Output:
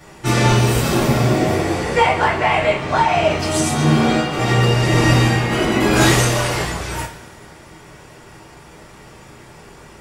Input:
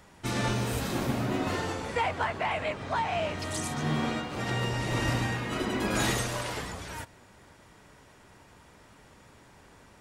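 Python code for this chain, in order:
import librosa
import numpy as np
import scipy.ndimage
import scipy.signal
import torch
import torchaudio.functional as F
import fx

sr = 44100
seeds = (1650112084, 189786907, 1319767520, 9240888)

y = fx.spec_repair(x, sr, seeds[0], start_s=1.12, length_s=0.76, low_hz=870.0, high_hz=9000.0, source='both')
y = fx.rev_double_slope(y, sr, seeds[1], early_s=0.3, late_s=1.9, knee_db=-18, drr_db=-8.0)
y = F.gain(torch.from_numpy(y), 5.0).numpy()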